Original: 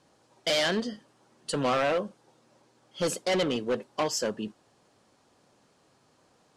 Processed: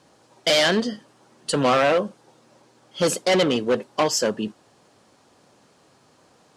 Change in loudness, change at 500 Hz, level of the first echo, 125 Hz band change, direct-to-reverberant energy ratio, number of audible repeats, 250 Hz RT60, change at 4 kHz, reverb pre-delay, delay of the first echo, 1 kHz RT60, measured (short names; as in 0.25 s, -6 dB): +7.5 dB, +7.5 dB, none, +7.0 dB, none, none, none, +7.5 dB, none, none, none